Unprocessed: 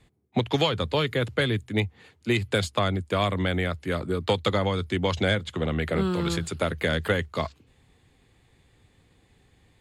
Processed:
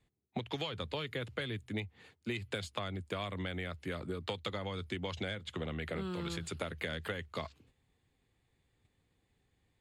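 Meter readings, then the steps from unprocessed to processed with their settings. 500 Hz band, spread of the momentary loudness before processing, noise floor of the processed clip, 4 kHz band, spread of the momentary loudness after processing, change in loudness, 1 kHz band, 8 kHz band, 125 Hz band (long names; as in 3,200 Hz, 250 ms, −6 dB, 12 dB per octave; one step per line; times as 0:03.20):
−14.0 dB, 5 LU, −78 dBFS, −11.5 dB, 3 LU, −13.0 dB, −13.5 dB, −11.5 dB, −14.0 dB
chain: noise gate −55 dBFS, range −9 dB
dynamic equaliser 2,700 Hz, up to +4 dB, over −43 dBFS, Q 1.1
downward compressor, threshold −29 dBFS, peak gain reduction 12 dB
level −6 dB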